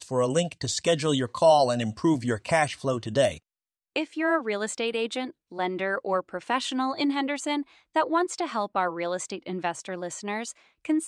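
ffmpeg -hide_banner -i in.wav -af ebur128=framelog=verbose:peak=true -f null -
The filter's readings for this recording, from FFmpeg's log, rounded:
Integrated loudness:
  I:         -26.9 LUFS
  Threshold: -37.1 LUFS
Loudness range:
  LRA:         4.9 LU
  Threshold: -47.3 LUFS
  LRA low:   -29.4 LUFS
  LRA high:  -24.5 LUFS
True peak:
  Peak:       -8.7 dBFS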